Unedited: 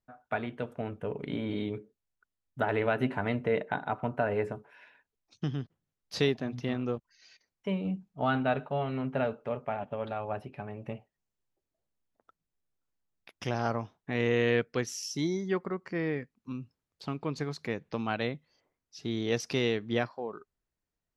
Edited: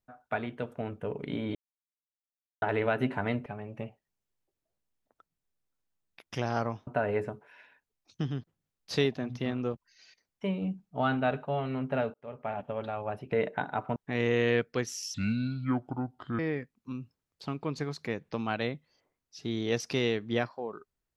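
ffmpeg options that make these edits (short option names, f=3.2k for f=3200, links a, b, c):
-filter_complex "[0:a]asplit=10[a][b][c][d][e][f][g][h][i][j];[a]atrim=end=1.55,asetpts=PTS-STARTPTS,afade=t=out:st=1.546:d=0.004:c=hsin[k];[b]atrim=start=1.55:end=2.62,asetpts=PTS-STARTPTS,volume=0[l];[c]atrim=start=2.62:end=3.462,asetpts=PTS-STARTPTS,afade=t=in:d=0.004:c=hsin[m];[d]atrim=start=10.548:end=13.962[n];[e]atrim=start=4.098:end=9.37,asetpts=PTS-STARTPTS,afade=t=out:st=5.268:d=0.004:c=hsin[o];[f]atrim=start=9.37:end=10.552,asetpts=PTS-STARTPTS,afade=t=in:d=0.4[p];[g]atrim=start=3.458:end=4.102[q];[h]atrim=start=13.958:end=15.144[r];[i]atrim=start=15.14:end=15.99,asetpts=PTS-STARTPTS,asetrate=29988,aresample=44100[s];[j]atrim=start=15.986[t];[k][l][m]concat=n=3:v=0:a=1[u];[u][n]acrossfade=d=0.004:c1=hsin:c2=hsin[v];[o][p]concat=n=2:v=0:a=1[w];[v][w]acrossfade=d=0.004:c1=hsin:c2=hsin[x];[x][q]acrossfade=d=0.004:c1=hsin:c2=hsin[y];[y][r]acrossfade=d=0.004:c1=hsin:c2=hsin[z];[z][s]acrossfade=d=0.004:c1=hsin:c2=hsin[aa];[aa][t]acrossfade=d=0.004:c1=hsin:c2=hsin"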